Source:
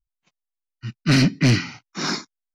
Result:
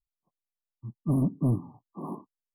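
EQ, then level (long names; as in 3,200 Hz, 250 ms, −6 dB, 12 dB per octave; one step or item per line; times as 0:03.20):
linear-phase brick-wall band-stop 1,200–9,300 Hz
−8.0 dB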